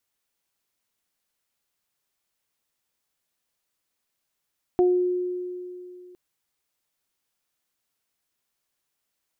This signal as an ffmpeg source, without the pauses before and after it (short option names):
-f lavfi -i "aevalsrc='0.178*pow(10,-3*t/2.72)*sin(2*PI*360*t)+0.0631*pow(10,-3*t/0.34)*sin(2*PI*720*t)':d=1.36:s=44100"